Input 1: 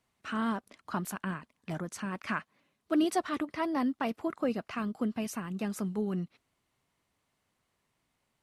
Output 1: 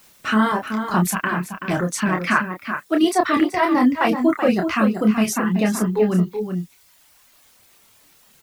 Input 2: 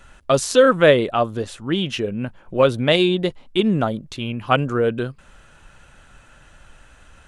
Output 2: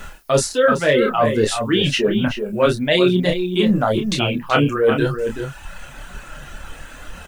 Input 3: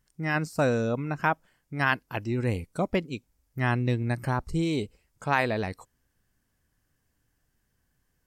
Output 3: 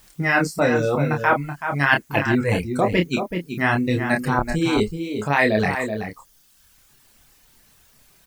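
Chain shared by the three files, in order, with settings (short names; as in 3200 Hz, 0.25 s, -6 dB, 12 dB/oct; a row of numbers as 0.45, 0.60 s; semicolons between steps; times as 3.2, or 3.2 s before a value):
flange 0.97 Hz, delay 4.5 ms, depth 6.9 ms, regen -34%; bell 99 Hz -6 dB 0.48 oct; reverse; compressor 6:1, threshold -33 dBFS; reverse; requantised 12-bit, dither triangular; reverb removal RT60 1.4 s; outdoor echo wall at 65 m, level -7 dB; dynamic EQ 1900 Hz, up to +4 dB, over -56 dBFS, Q 2.9; doubler 28 ms -5 dB; normalise peaks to -1.5 dBFS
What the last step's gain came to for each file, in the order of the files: +19.0, +17.5, +17.0 dB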